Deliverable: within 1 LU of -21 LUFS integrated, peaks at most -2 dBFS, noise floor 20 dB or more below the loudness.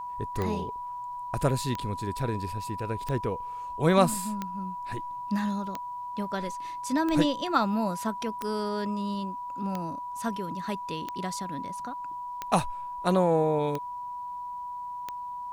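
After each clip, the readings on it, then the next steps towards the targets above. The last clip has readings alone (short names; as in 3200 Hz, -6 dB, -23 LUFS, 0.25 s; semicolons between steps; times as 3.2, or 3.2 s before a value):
clicks 12; steady tone 980 Hz; tone level -34 dBFS; loudness -30.5 LUFS; peak -8.0 dBFS; loudness target -21.0 LUFS
-> de-click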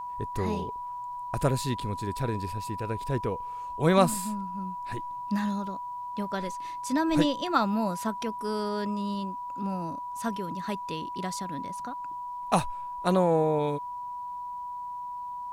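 clicks 0; steady tone 980 Hz; tone level -34 dBFS
-> notch 980 Hz, Q 30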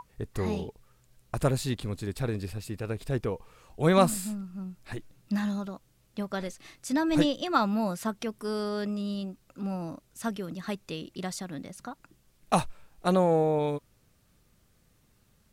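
steady tone none; loudness -30.5 LUFS; peak -8.5 dBFS; loudness target -21.0 LUFS
-> gain +9.5 dB; limiter -2 dBFS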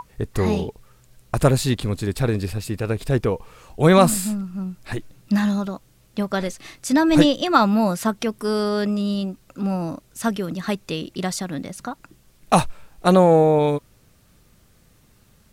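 loudness -21.0 LUFS; peak -2.0 dBFS; noise floor -57 dBFS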